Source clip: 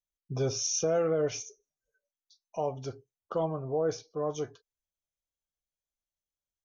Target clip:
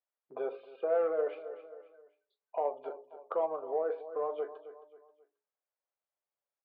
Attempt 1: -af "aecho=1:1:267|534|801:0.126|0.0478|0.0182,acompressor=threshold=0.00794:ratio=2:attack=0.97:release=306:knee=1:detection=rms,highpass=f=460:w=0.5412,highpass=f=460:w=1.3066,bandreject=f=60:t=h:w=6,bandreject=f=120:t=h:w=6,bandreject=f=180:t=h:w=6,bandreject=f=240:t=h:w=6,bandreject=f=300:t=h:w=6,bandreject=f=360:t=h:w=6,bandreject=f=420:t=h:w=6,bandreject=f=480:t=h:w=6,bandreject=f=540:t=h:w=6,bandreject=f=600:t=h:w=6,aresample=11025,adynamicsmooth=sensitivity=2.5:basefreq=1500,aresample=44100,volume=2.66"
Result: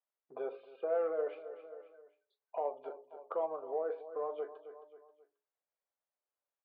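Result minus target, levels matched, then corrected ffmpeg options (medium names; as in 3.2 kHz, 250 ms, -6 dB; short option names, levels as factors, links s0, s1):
compression: peak gain reduction +3.5 dB
-af "aecho=1:1:267|534|801:0.126|0.0478|0.0182,acompressor=threshold=0.0178:ratio=2:attack=0.97:release=306:knee=1:detection=rms,highpass=f=460:w=0.5412,highpass=f=460:w=1.3066,bandreject=f=60:t=h:w=6,bandreject=f=120:t=h:w=6,bandreject=f=180:t=h:w=6,bandreject=f=240:t=h:w=6,bandreject=f=300:t=h:w=6,bandreject=f=360:t=h:w=6,bandreject=f=420:t=h:w=6,bandreject=f=480:t=h:w=6,bandreject=f=540:t=h:w=6,bandreject=f=600:t=h:w=6,aresample=11025,adynamicsmooth=sensitivity=2.5:basefreq=1500,aresample=44100,volume=2.66"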